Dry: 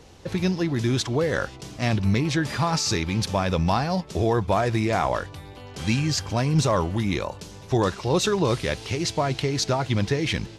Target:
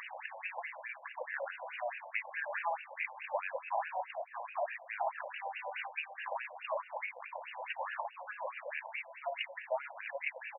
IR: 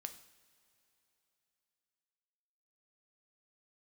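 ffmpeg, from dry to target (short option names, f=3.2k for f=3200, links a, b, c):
-filter_complex "[0:a]aeval=exprs='val(0)*gte(abs(val(0)),0.00355)':c=same,aecho=1:1:20|56:0.398|0.355,alimiter=limit=-22dB:level=0:latency=1:release=21,highpass=380,equalizer=f=1.3k:w=2.1:g=-13.5,asplit=2[a][b];[b]adelay=33,volume=-13.5dB[c];[a][c]amix=inputs=2:normalize=0,asplit=2[d][e];[1:a]atrim=start_sample=2205,lowshelf=f=490:g=-11.5[f];[e][f]afir=irnorm=-1:irlink=0,volume=7dB[g];[d][g]amix=inputs=2:normalize=0,acompressor=mode=upward:threshold=-43dB:ratio=2.5,lowpass=3.6k,acompressor=threshold=-40dB:ratio=12,afftfilt=real='re*between(b*sr/1024,720*pow(2100/720,0.5+0.5*sin(2*PI*4.7*pts/sr))/1.41,720*pow(2100/720,0.5+0.5*sin(2*PI*4.7*pts/sr))*1.41)':imag='im*between(b*sr/1024,720*pow(2100/720,0.5+0.5*sin(2*PI*4.7*pts/sr))/1.41,720*pow(2100/720,0.5+0.5*sin(2*PI*4.7*pts/sr))*1.41)':win_size=1024:overlap=0.75,volume=12dB"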